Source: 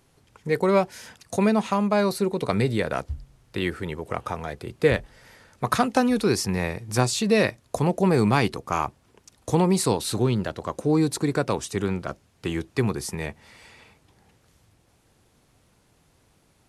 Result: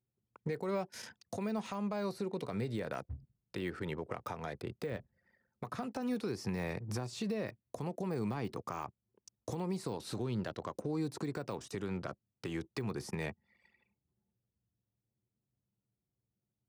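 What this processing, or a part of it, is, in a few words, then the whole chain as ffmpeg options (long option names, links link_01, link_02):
broadcast voice chain: -af "anlmdn=0.158,highpass=frequency=91:width=0.5412,highpass=frequency=91:width=1.3066,deesser=1,acompressor=threshold=-28dB:ratio=3,equalizer=frequency=5300:width_type=o:width=0.47:gain=4,alimiter=level_in=0.5dB:limit=-24dB:level=0:latency=1:release=207,volume=-0.5dB,volume=-3dB"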